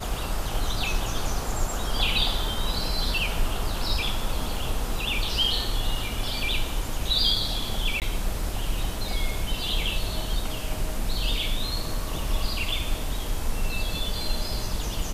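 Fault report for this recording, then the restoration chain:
0:08.00–0:08.02: drop-out 18 ms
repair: repair the gap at 0:08.00, 18 ms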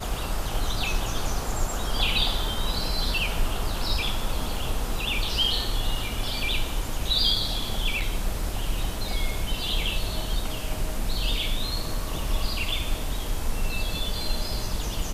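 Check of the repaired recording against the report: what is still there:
none of them is left

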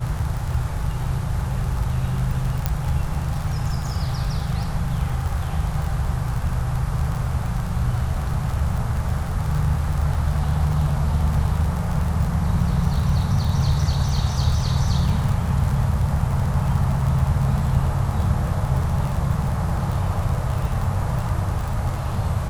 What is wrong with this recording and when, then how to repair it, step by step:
surface crackle 34 per second −25 dBFS
0:02.66: click −7 dBFS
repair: click removal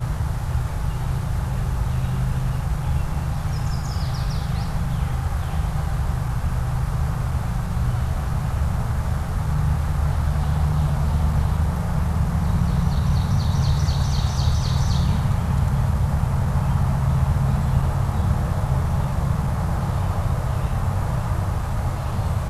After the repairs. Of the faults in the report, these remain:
none of them is left

